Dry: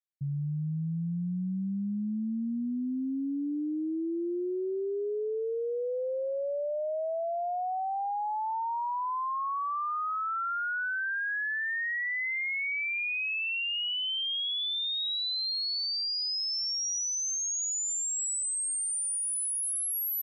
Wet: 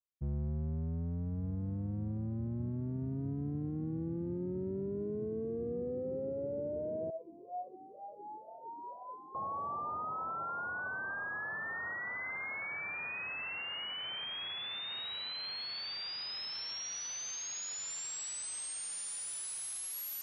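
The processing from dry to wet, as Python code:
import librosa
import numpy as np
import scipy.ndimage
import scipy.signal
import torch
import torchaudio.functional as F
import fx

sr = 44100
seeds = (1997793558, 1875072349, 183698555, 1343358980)

y = fx.octave_divider(x, sr, octaves=1, level_db=4.0)
y = fx.rider(y, sr, range_db=10, speed_s=2.0)
y = fx.echo_diffused(y, sr, ms=1268, feedback_pct=73, wet_db=-12.5)
y = fx.vowel_sweep(y, sr, vowels='a-u', hz=2.1, at=(7.1, 9.35))
y = F.gain(torch.from_numpy(y), -9.0).numpy()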